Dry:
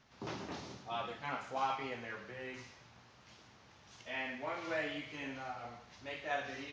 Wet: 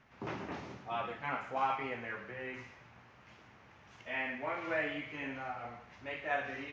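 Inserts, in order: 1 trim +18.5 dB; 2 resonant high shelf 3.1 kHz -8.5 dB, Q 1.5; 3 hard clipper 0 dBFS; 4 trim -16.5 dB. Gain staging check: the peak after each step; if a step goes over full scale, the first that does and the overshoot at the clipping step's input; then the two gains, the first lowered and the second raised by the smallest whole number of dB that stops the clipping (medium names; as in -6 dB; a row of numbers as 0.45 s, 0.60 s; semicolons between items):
-4.5 dBFS, -3.0 dBFS, -3.0 dBFS, -19.5 dBFS; nothing clips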